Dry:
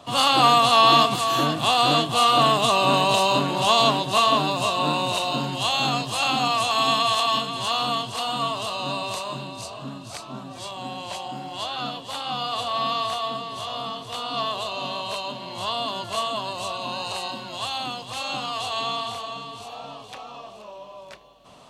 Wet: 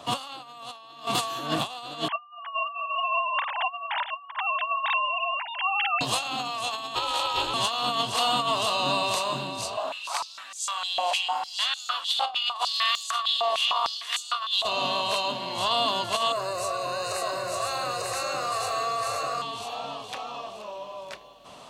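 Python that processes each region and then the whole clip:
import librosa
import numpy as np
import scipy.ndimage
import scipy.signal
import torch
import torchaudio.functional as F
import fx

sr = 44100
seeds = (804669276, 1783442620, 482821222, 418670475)

y = fx.chain(x, sr, fx.sine_speech(),
    fx.highpass(hz=880.0, slope=24), at=(2.08, 6.01))
y = fx.chain(y, sr, fx.ring_mod(carrier_hz=150.0),
    fx.doubler(ms=22.0, db=-13), at=(6.95, 7.54))
y = fx.chain(y, sr, fx.overload_stage(gain_db=16.5),
    fx.filter_held_highpass(hz=6.6, low_hz=690.0, high_hz=6900.0), at=(9.77, 14.65))
y = fx.chain(y, sr, fx.fixed_phaser(hz=880.0, stages=6),
    fx.echo_single(ms=895, db=-3.5),
    fx.env_flatten(amount_pct=50), at=(16.32, 19.42))
y = fx.low_shelf(y, sr, hz=260.0, db=-7.0)
y = fx.over_compress(y, sr, threshold_db=-27.0, ratio=-0.5)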